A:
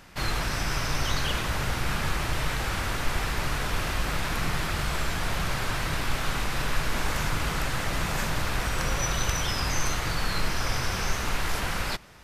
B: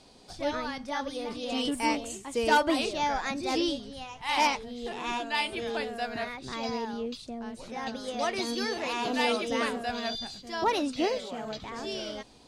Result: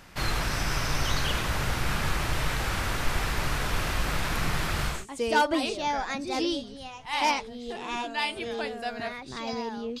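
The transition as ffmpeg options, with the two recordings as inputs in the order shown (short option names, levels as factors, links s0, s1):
-filter_complex "[0:a]apad=whole_dur=10,atrim=end=10,atrim=end=5.06,asetpts=PTS-STARTPTS[s0];[1:a]atrim=start=2.02:end=7.16,asetpts=PTS-STARTPTS[s1];[s0][s1]acrossfade=d=0.2:c1=tri:c2=tri"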